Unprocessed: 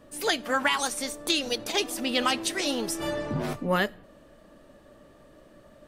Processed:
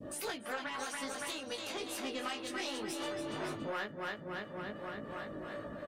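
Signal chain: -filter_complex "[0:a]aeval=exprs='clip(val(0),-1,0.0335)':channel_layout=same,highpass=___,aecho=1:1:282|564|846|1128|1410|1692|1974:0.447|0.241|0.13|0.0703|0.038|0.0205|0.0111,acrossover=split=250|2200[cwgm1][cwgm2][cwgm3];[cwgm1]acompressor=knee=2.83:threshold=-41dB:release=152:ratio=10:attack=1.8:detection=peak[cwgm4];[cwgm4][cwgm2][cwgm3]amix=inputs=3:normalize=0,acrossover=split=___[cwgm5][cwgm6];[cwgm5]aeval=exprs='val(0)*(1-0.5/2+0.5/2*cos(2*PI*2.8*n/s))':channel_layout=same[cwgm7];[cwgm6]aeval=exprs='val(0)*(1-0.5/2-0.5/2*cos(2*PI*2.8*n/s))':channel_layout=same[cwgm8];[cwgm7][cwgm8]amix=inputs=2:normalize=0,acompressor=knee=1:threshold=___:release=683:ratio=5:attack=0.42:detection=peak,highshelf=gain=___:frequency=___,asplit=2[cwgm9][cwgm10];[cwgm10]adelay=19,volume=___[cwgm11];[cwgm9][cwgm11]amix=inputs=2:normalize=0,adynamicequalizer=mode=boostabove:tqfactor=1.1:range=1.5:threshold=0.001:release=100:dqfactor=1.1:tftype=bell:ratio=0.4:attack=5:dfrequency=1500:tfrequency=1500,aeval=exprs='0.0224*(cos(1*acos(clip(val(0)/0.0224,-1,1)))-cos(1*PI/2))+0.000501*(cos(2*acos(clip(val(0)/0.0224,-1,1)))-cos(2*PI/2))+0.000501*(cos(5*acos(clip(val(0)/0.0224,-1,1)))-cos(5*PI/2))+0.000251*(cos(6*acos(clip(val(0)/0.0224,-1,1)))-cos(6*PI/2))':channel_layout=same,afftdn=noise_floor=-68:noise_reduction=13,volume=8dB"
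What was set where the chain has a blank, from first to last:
75, 440, -45dB, -3, 6200, -3dB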